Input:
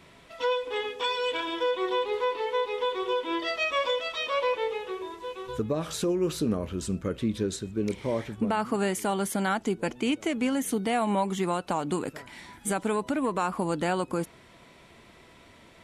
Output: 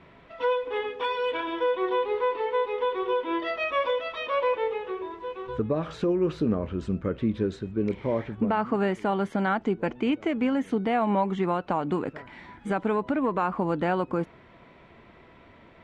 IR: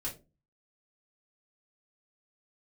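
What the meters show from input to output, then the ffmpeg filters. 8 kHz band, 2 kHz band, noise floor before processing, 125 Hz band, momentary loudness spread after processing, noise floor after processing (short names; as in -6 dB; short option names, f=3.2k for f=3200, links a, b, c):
under -20 dB, -0.5 dB, -54 dBFS, +2.0 dB, 6 LU, -53 dBFS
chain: -af "lowpass=2.2k,volume=2dB"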